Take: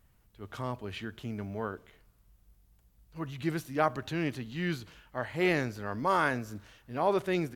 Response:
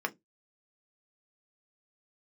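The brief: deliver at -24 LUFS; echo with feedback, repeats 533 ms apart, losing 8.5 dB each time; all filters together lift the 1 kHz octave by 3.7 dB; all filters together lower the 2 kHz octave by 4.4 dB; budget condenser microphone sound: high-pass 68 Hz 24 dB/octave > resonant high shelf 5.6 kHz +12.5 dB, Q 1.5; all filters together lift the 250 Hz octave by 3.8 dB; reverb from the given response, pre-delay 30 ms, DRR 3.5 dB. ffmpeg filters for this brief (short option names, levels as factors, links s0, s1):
-filter_complex "[0:a]equalizer=f=250:t=o:g=5.5,equalizer=f=1000:t=o:g=6.5,equalizer=f=2000:t=o:g=-7.5,aecho=1:1:533|1066|1599|2132:0.376|0.143|0.0543|0.0206,asplit=2[s0][s1];[1:a]atrim=start_sample=2205,adelay=30[s2];[s1][s2]afir=irnorm=-1:irlink=0,volume=0.335[s3];[s0][s3]amix=inputs=2:normalize=0,highpass=f=68:w=0.5412,highpass=f=68:w=1.3066,highshelf=f=5600:t=q:w=1.5:g=12.5,volume=1.68"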